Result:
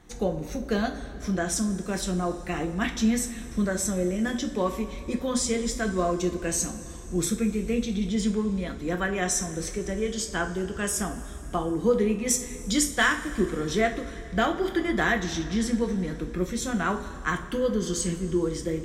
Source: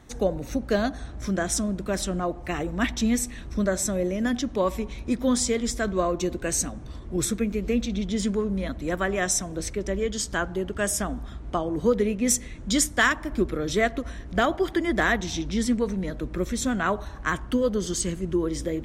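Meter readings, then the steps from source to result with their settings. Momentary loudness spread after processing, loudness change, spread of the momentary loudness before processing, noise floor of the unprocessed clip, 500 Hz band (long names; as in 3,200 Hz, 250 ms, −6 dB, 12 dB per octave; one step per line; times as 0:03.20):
7 LU, −1.0 dB, 7 LU, −40 dBFS, −1.5 dB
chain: notch filter 630 Hz, Q 15
coupled-rooms reverb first 0.32 s, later 3.5 s, from −18 dB, DRR 3.5 dB
level −3 dB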